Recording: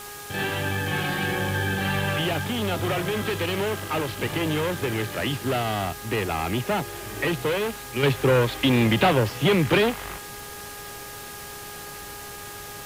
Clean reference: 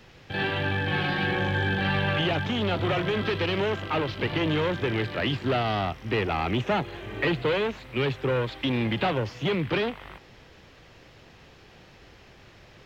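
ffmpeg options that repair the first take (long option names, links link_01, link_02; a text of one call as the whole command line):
ffmpeg -i in.wav -af "bandreject=frequency=411.1:width_type=h:width=4,bandreject=frequency=822.2:width_type=h:width=4,bandreject=frequency=1233.3:width_type=h:width=4,bandreject=frequency=1644.4:width_type=h:width=4,afwtdn=0.01,asetnsamples=nb_out_samples=441:pad=0,asendcmd='8.03 volume volume -6.5dB',volume=0dB" out.wav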